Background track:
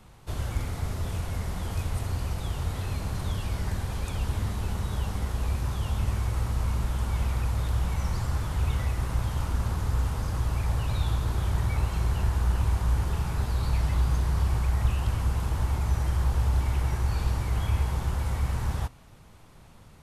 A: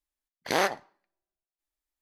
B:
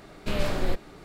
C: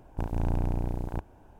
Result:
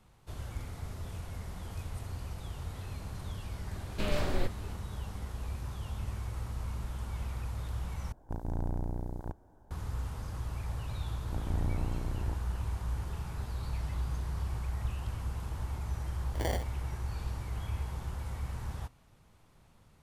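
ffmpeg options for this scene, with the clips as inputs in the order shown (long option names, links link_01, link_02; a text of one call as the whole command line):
ffmpeg -i bed.wav -i cue0.wav -i cue1.wav -i cue2.wav -filter_complex "[3:a]asplit=2[link_01][link_02];[0:a]volume=-10dB[link_03];[link_01]equalizer=frequency=2600:width_type=o:width=0.57:gain=-15[link_04];[link_02]tiltshelf=frequency=970:gain=4[link_05];[1:a]acrusher=samples=34:mix=1:aa=0.000001[link_06];[link_03]asplit=2[link_07][link_08];[link_07]atrim=end=8.124[link_09];[link_04]atrim=end=1.59,asetpts=PTS-STARTPTS,volume=-6dB[link_10];[link_08]atrim=start=9.706[link_11];[2:a]atrim=end=1.04,asetpts=PTS-STARTPTS,volume=-4.5dB,afade=type=in:duration=0.004:curve=hsin,afade=type=out:start_time=1.036:duration=0.004:curve=hsin,adelay=3720[link_12];[link_05]atrim=end=1.59,asetpts=PTS-STARTPTS,volume=-9.5dB,afade=type=in:duration=0.004:curve=hsin,afade=type=out:start_time=1.586:duration=0.004:curve=hsin,adelay=491274S[link_13];[link_06]atrim=end=2.01,asetpts=PTS-STARTPTS,volume=-10dB,afade=type=in:duration=0.004:curve=hsin,afade=type=out:start_time=2.006:duration=0.004:curve=hsin,adelay=15890[link_14];[link_09][link_10]acrossfade=duration=0.004:curve1=hsin:curve2=hsin[link_15];[link_15][link_11]acrossfade=duration=0.004:curve1=hsin:curve2=hsin[link_16];[link_16][link_12][link_13][link_14]amix=inputs=4:normalize=0" out.wav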